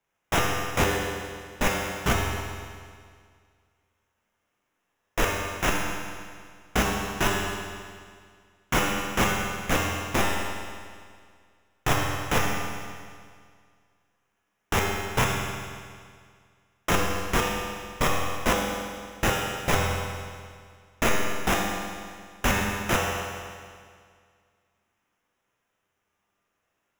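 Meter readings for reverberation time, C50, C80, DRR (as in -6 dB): 2.0 s, 0.0 dB, 1.5 dB, -2.5 dB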